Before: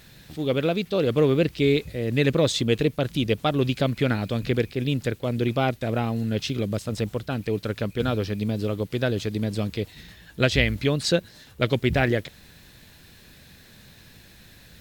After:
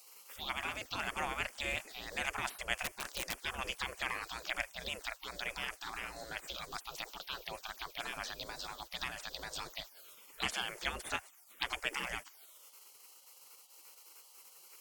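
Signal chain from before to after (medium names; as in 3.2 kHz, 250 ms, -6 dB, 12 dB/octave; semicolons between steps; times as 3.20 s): touch-sensitive phaser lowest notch 580 Hz, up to 3.9 kHz, full sweep at -20 dBFS; spectral gate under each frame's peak -25 dB weak; 2.81–3.37 s: integer overflow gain 33 dB; trim +4.5 dB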